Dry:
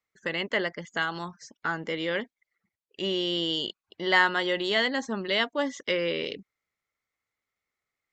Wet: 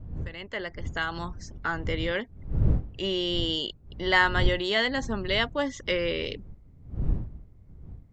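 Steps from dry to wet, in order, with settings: fade-in on the opening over 1.22 s; wind noise 90 Hz -32 dBFS

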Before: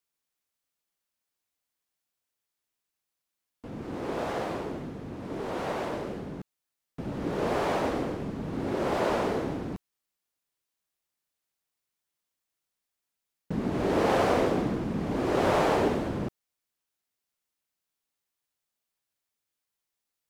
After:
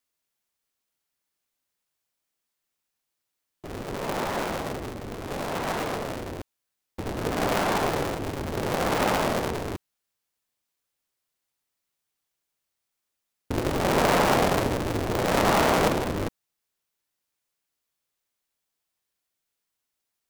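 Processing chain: cycle switcher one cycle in 2, inverted; trim +3 dB

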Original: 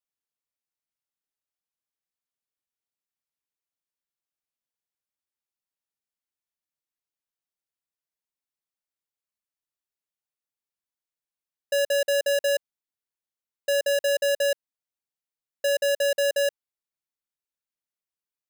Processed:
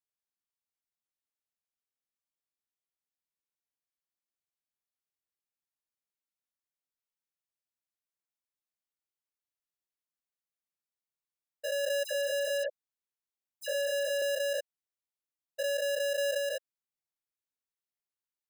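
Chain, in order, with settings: spectrogram pixelated in time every 200 ms; 12.04–14.22 s: phase dispersion lows, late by 66 ms, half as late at 2.6 kHz; trim -4.5 dB

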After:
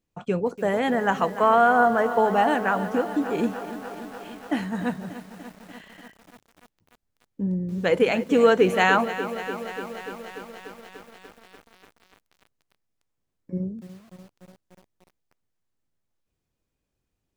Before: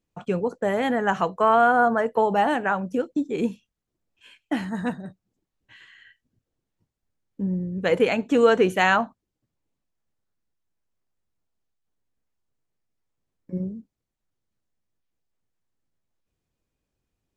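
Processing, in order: bit-crushed delay 293 ms, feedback 80%, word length 7-bit, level -13 dB

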